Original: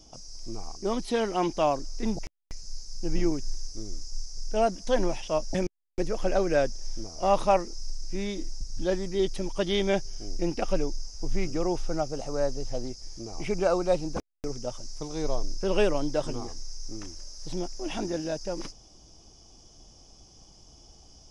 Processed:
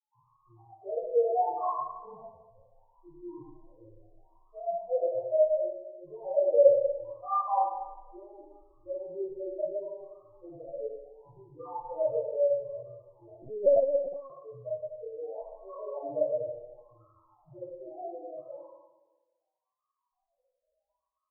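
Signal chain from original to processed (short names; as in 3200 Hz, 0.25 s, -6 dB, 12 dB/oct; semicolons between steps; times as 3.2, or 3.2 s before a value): resonant low shelf 160 Hz +8 dB, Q 3; backlash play -33 dBFS; wah 0.72 Hz 540–1200 Hz, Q 3.8; 9.89–11.47 tube stage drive 41 dB, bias 0.5; loudest bins only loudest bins 2; reverb RT60 1.1 s, pre-delay 8 ms, DRR -9.5 dB; 13.42–14.3 LPC vocoder at 8 kHz pitch kept; gain -1.5 dB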